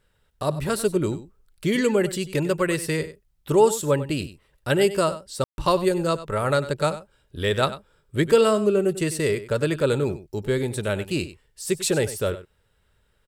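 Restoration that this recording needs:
ambience match 0:05.44–0:05.58
echo removal 96 ms −14.5 dB

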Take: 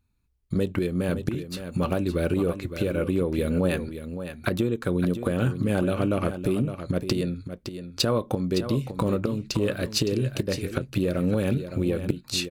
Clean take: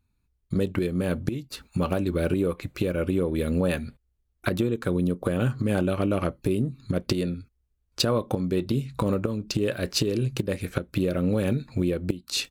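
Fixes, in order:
echo removal 563 ms −10 dB

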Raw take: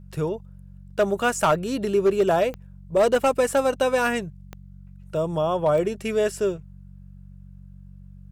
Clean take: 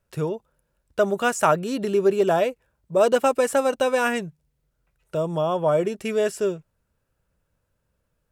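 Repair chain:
clipped peaks rebuilt −13 dBFS
click removal
hum removal 47 Hz, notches 4

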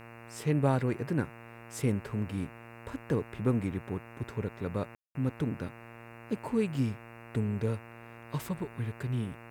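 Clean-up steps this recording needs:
hum removal 116.4 Hz, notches 24
ambience match 0:04.95–0:05.15
downward expander −42 dBFS, range −21 dB

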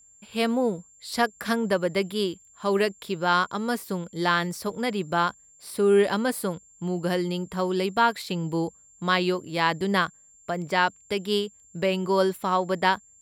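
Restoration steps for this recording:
notch filter 7,300 Hz, Q 30

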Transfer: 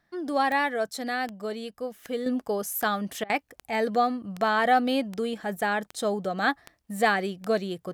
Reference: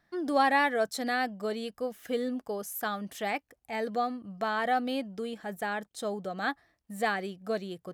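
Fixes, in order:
click removal
repair the gap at 0:03.24, 55 ms
level correction −6.5 dB, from 0:02.26

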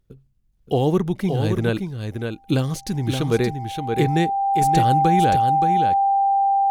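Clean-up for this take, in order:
notch filter 790 Hz, Q 30
echo removal 573 ms −6 dB

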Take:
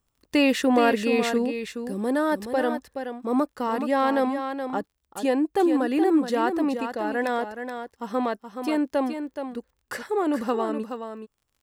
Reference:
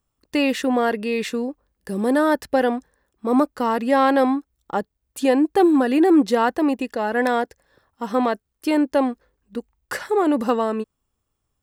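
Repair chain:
click removal
echo removal 424 ms −8 dB
level correction +5.5 dB, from 0:01.73

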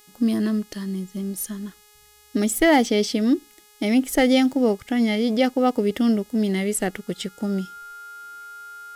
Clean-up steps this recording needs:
clipped peaks rebuilt −8 dBFS
hum removal 418.6 Hz, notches 36
notch filter 1,400 Hz, Q 30

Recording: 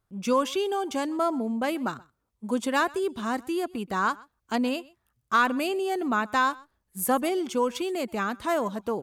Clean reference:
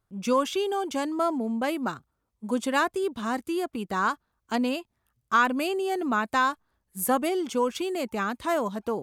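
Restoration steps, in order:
clipped peaks rebuilt −14 dBFS
echo removal 127 ms −23.5 dB

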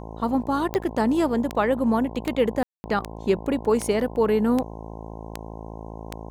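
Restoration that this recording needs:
click removal
hum removal 54.9 Hz, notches 19
ambience match 0:02.63–0:02.84

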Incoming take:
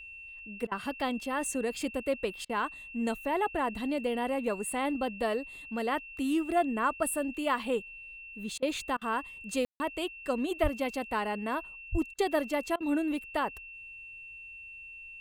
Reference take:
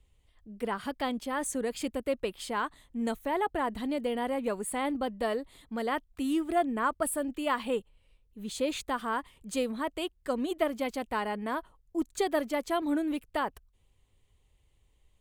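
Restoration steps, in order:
notch filter 2,700 Hz, Q 30
high-pass at the plosives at 0:10.62/0:11.91
ambience match 0:09.65–0:09.80
repair the gap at 0:00.67/0:02.45/0:08.58/0:08.97/0:12.14/0:12.76, 43 ms

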